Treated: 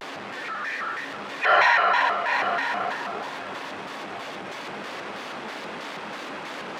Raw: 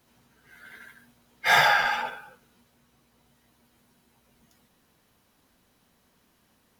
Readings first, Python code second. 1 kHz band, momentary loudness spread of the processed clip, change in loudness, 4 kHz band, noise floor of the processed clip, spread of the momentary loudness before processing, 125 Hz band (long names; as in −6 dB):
+5.5 dB, 16 LU, −4.0 dB, 0.0 dB, −36 dBFS, 13 LU, +1.0 dB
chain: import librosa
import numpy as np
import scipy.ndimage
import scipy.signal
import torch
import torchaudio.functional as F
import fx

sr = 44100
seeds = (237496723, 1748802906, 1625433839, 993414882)

p1 = x + 0.5 * 10.0 ** (-31.0 / 20.0) * np.sign(x)
p2 = fx.echo_split(p1, sr, split_hz=1300.0, low_ms=392, high_ms=129, feedback_pct=52, wet_db=-10.0)
p3 = fx.over_compress(p2, sr, threshold_db=-26.0, ratio=-1.0)
p4 = p2 + (p3 * librosa.db_to_amplitude(-2.5))
p5 = fx.bandpass_edges(p4, sr, low_hz=380.0, high_hz=2600.0)
p6 = p5 + fx.echo_single(p5, sr, ms=826, db=-8.0, dry=0)
y = fx.vibrato_shape(p6, sr, shape='square', rate_hz=3.1, depth_cents=250.0)